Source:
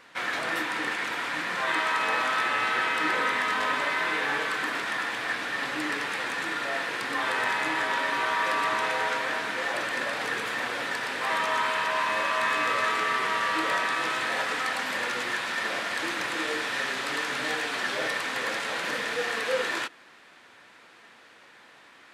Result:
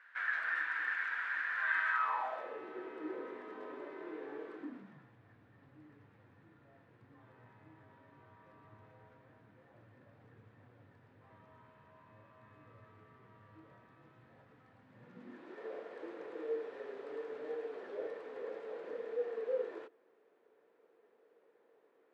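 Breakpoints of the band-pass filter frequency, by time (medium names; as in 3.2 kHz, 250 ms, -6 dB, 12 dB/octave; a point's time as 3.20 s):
band-pass filter, Q 6.3
1.91 s 1.6 kHz
2.63 s 370 Hz
4.54 s 370 Hz
5.17 s 100 Hz
14.87 s 100 Hz
15.61 s 440 Hz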